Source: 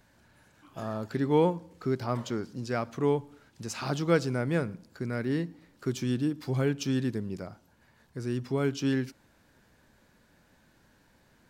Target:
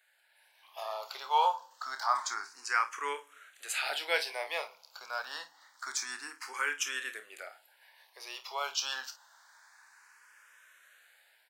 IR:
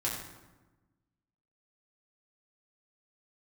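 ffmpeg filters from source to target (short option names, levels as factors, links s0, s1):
-filter_complex "[0:a]highpass=f=860:w=0.5412,highpass=f=860:w=1.3066,dynaudnorm=f=260:g=5:m=2.82,asplit=2[s0][s1];[s1]aecho=0:1:28|53:0.335|0.2[s2];[s0][s2]amix=inputs=2:normalize=0,asplit=2[s3][s4];[s4]afreqshift=0.27[s5];[s3][s5]amix=inputs=2:normalize=1"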